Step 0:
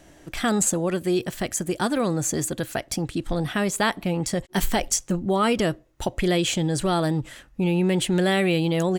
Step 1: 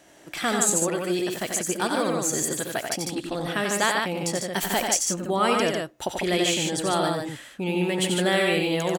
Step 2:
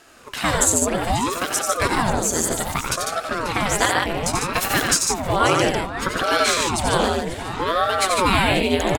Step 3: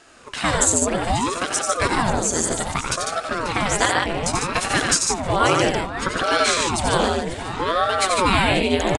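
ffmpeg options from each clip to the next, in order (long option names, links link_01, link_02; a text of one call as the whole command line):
ffmpeg -i in.wav -filter_complex "[0:a]highpass=frequency=420:poles=1,asplit=2[link_01][link_02];[link_02]aecho=0:1:73|90|149:0.2|0.562|0.596[link_03];[link_01][link_03]amix=inputs=2:normalize=0" out.wav
ffmpeg -i in.wav -filter_complex "[0:a]asplit=2[link_01][link_02];[link_02]adelay=538,lowpass=frequency=4500:poles=1,volume=-11dB,asplit=2[link_03][link_04];[link_04]adelay=538,lowpass=frequency=4500:poles=1,volume=0.47,asplit=2[link_05][link_06];[link_06]adelay=538,lowpass=frequency=4500:poles=1,volume=0.47,asplit=2[link_07][link_08];[link_08]adelay=538,lowpass=frequency=4500:poles=1,volume=0.47,asplit=2[link_09][link_10];[link_10]adelay=538,lowpass=frequency=4500:poles=1,volume=0.47[link_11];[link_01][link_03][link_05][link_07][link_09][link_11]amix=inputs=6:normalize=0,aeval=exprs='val(0)*sin(2*PI*540*n/s+540*0.85/0.63*sin(2*PI*0.63*n/s))':channel_layout=same,volume=7dB" out.wav
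ffmpeg -i in.wav -af "aresample=22050,aresample=44100" out.wav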